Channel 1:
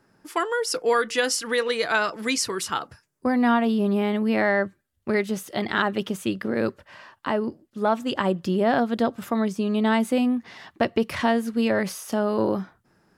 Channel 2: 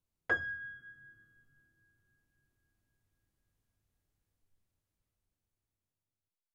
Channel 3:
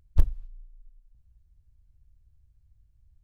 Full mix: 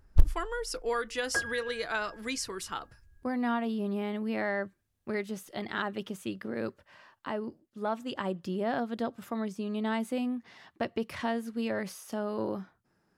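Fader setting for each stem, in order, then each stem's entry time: -10.0 dB, +0.5 dB, 0.0 dB; 0.00 s, 1.05 s, 0.00 s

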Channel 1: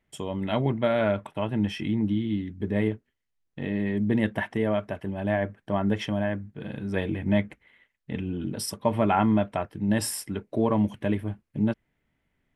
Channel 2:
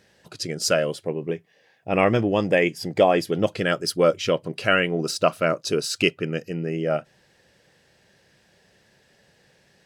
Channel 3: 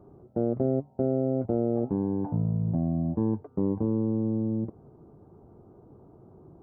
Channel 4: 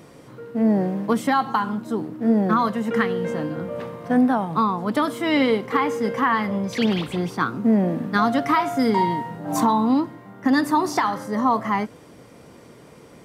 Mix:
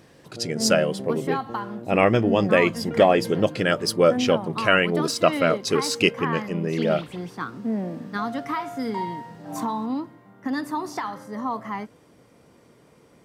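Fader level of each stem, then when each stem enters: mute, +1.0 dB, -11.5 dB, -8.5 dB; mute, 0.00 s, 0.00 s, 0.00 s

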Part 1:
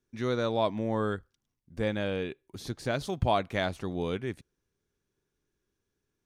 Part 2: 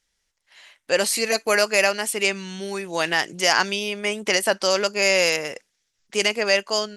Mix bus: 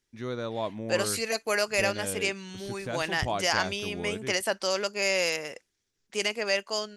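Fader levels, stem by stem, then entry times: -4.5 dB, -7.5 dB; 0.00 s, 0.00 s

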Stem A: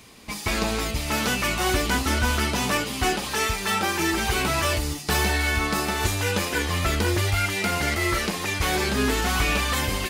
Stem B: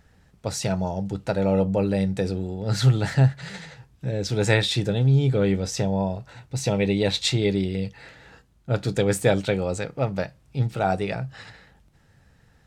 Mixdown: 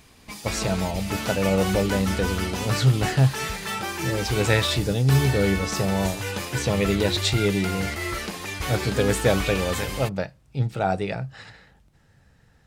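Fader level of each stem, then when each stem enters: -5.5 dB, -0.5 dB; 0.00 s, 0.00 s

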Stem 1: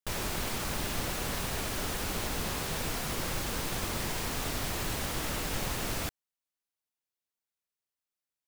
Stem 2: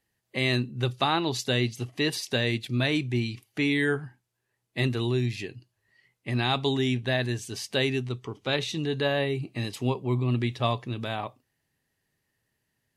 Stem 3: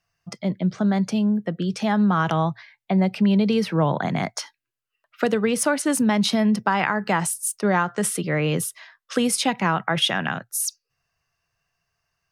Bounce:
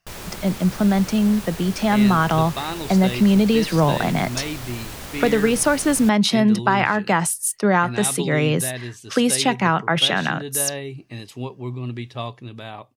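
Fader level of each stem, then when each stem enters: -1.0 dB, -3.5 dB, +3.0 dB; 0.00 s, 1.55 s, 0.00 s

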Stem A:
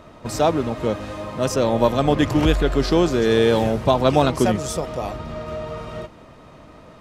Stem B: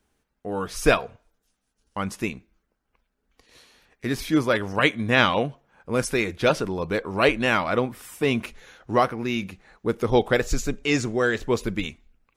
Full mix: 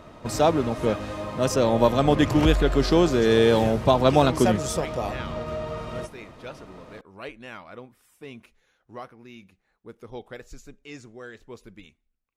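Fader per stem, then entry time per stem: -1.5 dB, -19.0 dB; 0.00 s, 0.00 s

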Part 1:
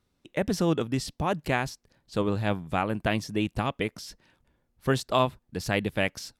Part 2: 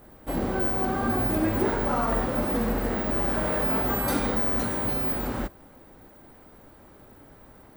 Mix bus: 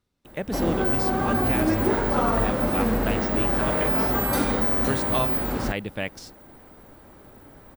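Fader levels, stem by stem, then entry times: -3.5 dB, +2.5 dB; 0.00 s, 0.25 s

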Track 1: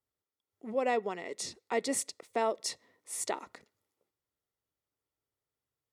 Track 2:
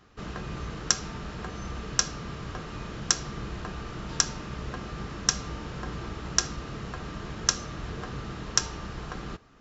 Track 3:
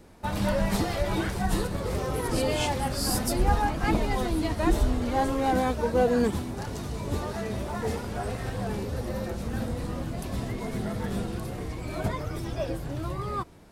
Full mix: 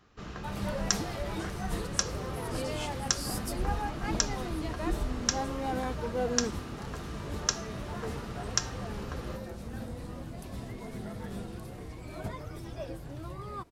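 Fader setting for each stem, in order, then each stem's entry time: -15.0 dB, -4.5 dB, -8.5 dB; 0.00 s, 0.00 s, 0.20 s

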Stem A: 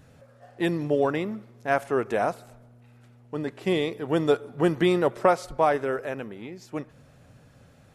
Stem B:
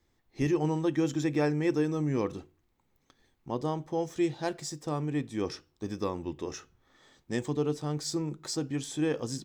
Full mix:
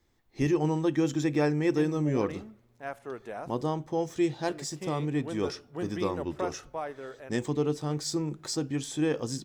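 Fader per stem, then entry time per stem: -14.0 dB, +1.5 dB; 1.15 s, 0.00 s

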